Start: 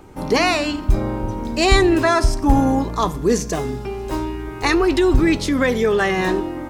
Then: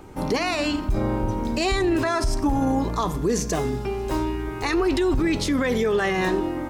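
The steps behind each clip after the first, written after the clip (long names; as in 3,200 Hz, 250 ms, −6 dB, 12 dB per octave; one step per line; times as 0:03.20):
brickwall limiter −14.5 dBFS, peak gain reduction 11.5 dB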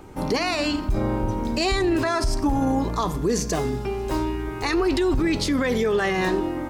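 dynamic equaliser 4,600 Hz, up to +5 dB, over −51 dBFS, Q 6.7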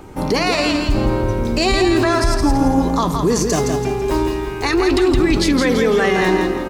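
repeating echo 166 ms, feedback 37%, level −5 dB
level +5.5 dB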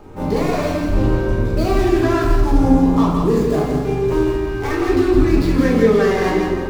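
running median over 15 samples
flanger 1.2 Hz, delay 8.6 ms, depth 6.9 ms, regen +80%
convolution reverb RT60 0.65 s, pre-delay 5 ms, DRR −3.5 dB
level −1.5 dB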